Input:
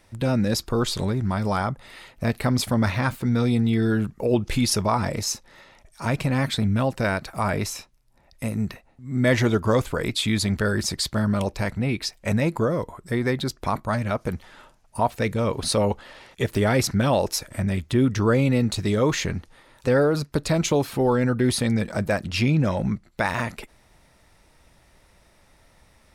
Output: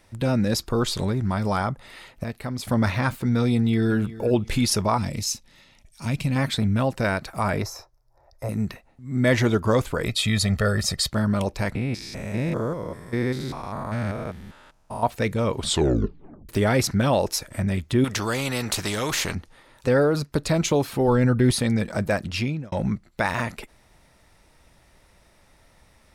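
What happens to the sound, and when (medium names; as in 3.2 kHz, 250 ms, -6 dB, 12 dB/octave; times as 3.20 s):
2.24–2.65 s: gain -8.5 dB
3.53–3.94 s: echo throw 360 ms, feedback 35%, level -17 dB
4.98–6.36 s: high-order bell 810 Hz -9.5 dB 2.7 oct
7.62–8.49 s: FFT filter 130 Hz 0 dB, 190 Hz -28 dB, 340 Hz -1 dB, 670 Hz +6 dB, 1.4 kHz -1 dB, 2 kHz -8 dB, 2.9 kHz -18 dB, 5.4 kHz -1 dB, 8.8 kHz -13 dB, 13 kHz -4 dB
10.06–11.10 s: comb 1.6 ms, depth 66%
11.75–15.03 s: spectrogram pixelated in time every 200 ms
15.55 s: tape stop 0.94 s
18.04–19.35 s: spectrum-flattening compressor 2:1
21.08–21.51 s: bass shelf 110 Hz +10.5 dB
22.26–22.72 s: fade out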